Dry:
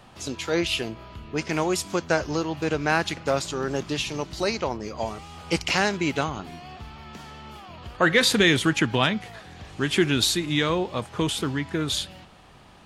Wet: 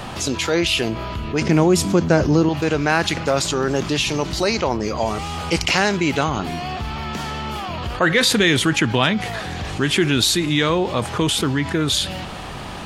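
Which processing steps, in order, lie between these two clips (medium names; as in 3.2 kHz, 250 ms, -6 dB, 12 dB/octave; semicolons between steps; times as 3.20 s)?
1.41–2.49 s: peaking EQ 180 Hz +13 dB 2.9 oct; level flattener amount 50%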